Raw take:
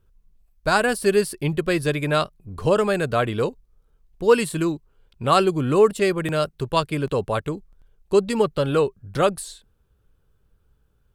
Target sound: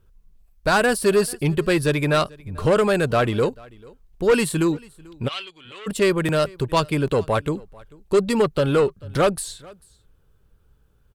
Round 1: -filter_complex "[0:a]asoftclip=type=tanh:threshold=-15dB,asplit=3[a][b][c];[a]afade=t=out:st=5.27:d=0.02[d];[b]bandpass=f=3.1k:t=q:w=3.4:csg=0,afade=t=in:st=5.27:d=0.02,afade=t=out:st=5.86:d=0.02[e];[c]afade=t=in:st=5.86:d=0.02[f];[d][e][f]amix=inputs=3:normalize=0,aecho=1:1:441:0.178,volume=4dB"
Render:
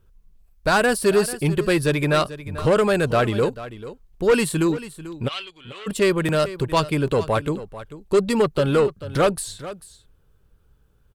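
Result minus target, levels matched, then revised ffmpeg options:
echo-to-direct +9.5 dB
-filter_complex "[0:a]asoftclip=type=tanh:threshold=-15dB,asplit=3[a][b][c];[a]afade=t=out:st=5.27:d=0.02[d];[b]bandpass=f=3.1k:t=q:w=3.4:csg=0,afade=t=in:st=5.27:d=0.02,afade=t=out:st=5.86:d=0.02[e];[c]afade=t=in:st=5.86:d=0.02[f];[d][e][f]amix=inputs=3:normalize=0,aecho=1:1:441:0.0596,volume=4dB"

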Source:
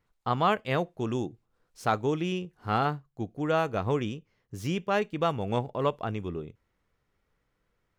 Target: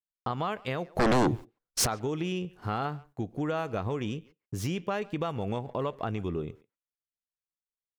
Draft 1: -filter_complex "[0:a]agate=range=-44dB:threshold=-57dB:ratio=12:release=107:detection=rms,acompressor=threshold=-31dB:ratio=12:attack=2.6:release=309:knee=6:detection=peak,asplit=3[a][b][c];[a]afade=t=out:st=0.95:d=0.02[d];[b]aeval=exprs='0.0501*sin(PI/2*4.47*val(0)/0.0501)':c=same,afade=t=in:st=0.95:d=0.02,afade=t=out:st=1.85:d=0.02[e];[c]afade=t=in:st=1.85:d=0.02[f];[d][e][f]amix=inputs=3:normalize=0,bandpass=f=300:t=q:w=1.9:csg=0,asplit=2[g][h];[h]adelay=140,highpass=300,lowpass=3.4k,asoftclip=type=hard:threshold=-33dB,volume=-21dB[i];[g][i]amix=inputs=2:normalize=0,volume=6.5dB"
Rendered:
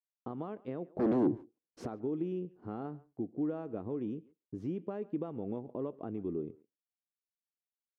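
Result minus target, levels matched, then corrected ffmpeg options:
250 Hz band +4.0 dB
-filter_complex "[0:a]agate=range=-44dB:threshold=-57dB:ratio=12:release=107:detection=rms,acompressor=threshold=-31dB:ratio=12:attack=2.6:release=309:knee=6:detection=peak,asplit=3[a][b][c];[a]afade=t=out:st=0.95:d=0.02[d];[b]aeval=exprs='0.0501*sin(PI/2*4.47*val(0)/0.0501)':c=same,afade=t=in:st=0.95:d=0.02,afade=t=out:st=1.85:d=0.02[e];[c]afade=t=in:st=1.85:d=0.02[f];[d][e][f]amix=inputs=3:normalize=0,asplit=2[g][h];[h]adelay=140,highpass=300,lowpass=3.4k,asoftclip=type=hard:threshold=-33dB,volume=-21dB[i];[g][i]amix=inputs=2:normalize=0,volume=6.5dB"

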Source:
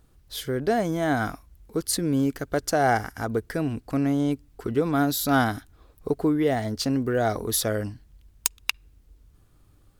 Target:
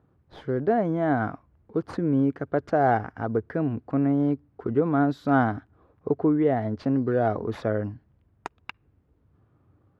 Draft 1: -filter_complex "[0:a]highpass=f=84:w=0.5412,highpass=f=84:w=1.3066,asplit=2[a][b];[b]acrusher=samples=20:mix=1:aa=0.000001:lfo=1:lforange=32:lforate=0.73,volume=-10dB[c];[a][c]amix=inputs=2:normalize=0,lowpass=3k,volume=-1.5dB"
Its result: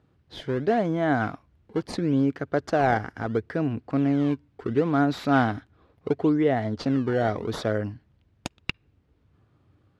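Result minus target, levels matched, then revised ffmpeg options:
4000 Hz band +12.0 dB; decimation with a swept rate: distortion +7 dB
-filter_complex "[0:a]highpass=f=84:w=0.5412,highpass=f=84:w=1.3066,asplit=2[a][b];[b]acrusher=samples=6:mix=1:aa=0.000001:lfo=1:lforange=9.6:lforate=0.73,volume=-10dB[c];[a][c]amix=inputs=2:normalize=0,lowpass=1.4k,volume=-1.5dB"

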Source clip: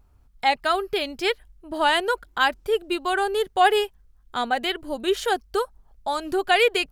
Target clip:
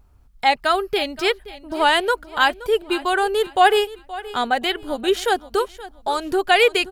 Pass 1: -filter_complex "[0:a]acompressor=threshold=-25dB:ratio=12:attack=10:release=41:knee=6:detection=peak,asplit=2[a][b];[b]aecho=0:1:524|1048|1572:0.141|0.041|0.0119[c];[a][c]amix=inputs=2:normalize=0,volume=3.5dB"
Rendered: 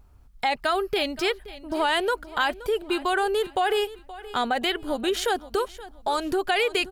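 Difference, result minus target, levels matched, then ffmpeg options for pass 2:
compressor: peak gain reduction +12 dB
-filter_complex "[0:a]asplit=2[a][b];[b]aecho=0:1:524|1048|1572:0.141|0.041|0.0119[c];[a][c]amix=inputs=2:normalize=0,volume=3.5dB"

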